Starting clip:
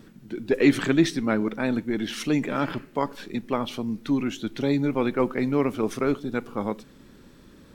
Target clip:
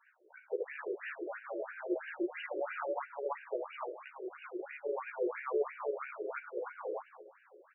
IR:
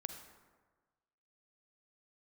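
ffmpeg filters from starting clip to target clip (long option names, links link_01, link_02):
-filter_complex "[0:a]aecho=1:1:204.1|277:0.501|0.708,alimiter=limit=-16.5dB:level=0:latency=1:release=350,asplit=2[link_01][link_02];[1:a]atrim=start_sample=2205,adelay=14[link_03];[link_02][link_03]afir=irnorm=-1:irlink=0,volume=2.5dB[link_04];[link_01][link_04]amix=inputs=2:normalize=0,flanger=delay=9.5:depth=5.2:regen=-67:speed=0.28:shape=sinusoidal,asettb=1/sr,asplit=3[link_05][link_06][link_07];[link_05]atrim=end=2.104[link_08];[link_06]atrim=start=2.1:end=3.06,asetpts=PTS-STARTPTS,afade=type=in:duration=0.004:curve=qsin,afade=type=out:start_time=0.956:duration=0.004:curve=qsin,aecho=1:1:5.5:0.72,atrim=end_sample=42336[link_09];[link_07]atrim=start=3.056[link_10];[link_08][link_09]acrossfade=duration=0.004:curve1=hsin:curve2=qsin[link_11];[link_11][link_10]acrossfade=duration=0.004:curve1=qsin:curve2=hsin,afftfilt=real='re*between(b*sr/1024,430*pow(2100/430,0.5+0.5*sin(2*PI*3*pts/sr))/1.41,430*pow(2100/430,0.5+0.5*sin(2*PI*3*pts/sr))*1.41)':imag='im*between(b*sr/1024,430*pow(2100/430,0.5+0.5*sin(2*PI*3*pts/sr))/1.41,430*pow(2100/430,0.5+0.5*sin(2*PI*3*pts/sr))*1.41)':win_size=1024:overlap=0.75,volume=-1dB"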